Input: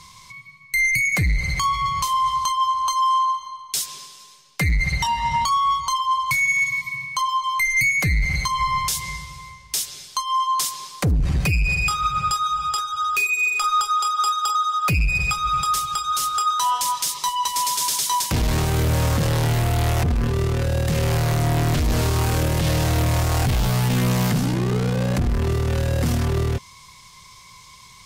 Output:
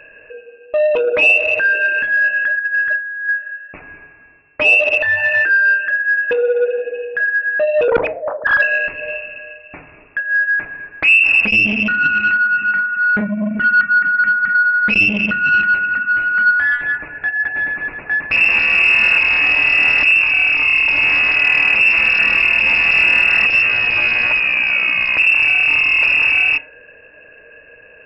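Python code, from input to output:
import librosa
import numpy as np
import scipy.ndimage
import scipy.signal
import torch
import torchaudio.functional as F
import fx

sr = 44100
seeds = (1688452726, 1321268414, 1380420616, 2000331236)

y = fx.sine_speech(x, sr, at=(7.88, 8.62))
y = fx.freq_invert(y, sr, carrier_hz=2700)
y = fx.over_compress(y, sr, threshold_db=-24.0, ratio=-0.5, at=(2.59, 3.29))
y = fx.rev_fdn(y, sr, rt60_s=0.47, lf_ratio=1.0, hf_ratio=0.5, size_ms=20.0, drr_db=11.0)
y = fx.transformer_sat(y, sr, knee_hz=940.0)
y = y * 10.0 ** (5.5 / 20.0)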